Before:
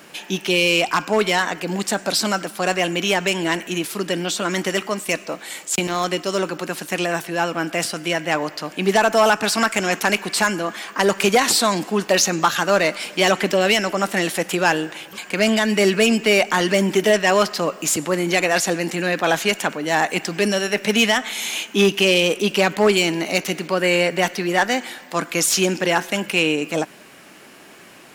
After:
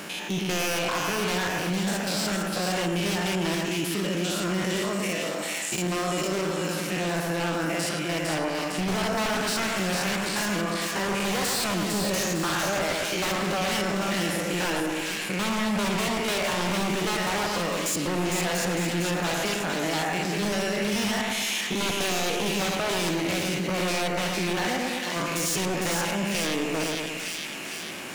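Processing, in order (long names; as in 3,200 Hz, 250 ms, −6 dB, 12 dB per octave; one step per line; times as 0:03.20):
spectrum averaged block by block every 100 ms
parametric band 180 Hz +5 dB 0.31 octaves
wave folding −18.5 dBFS
on a send: echo with a time of its own for lows and highs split 1,800 Hz, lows 111 ms, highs 455 ms, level −4 dB
on the sum: envelope flattener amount 50%
level −6 dB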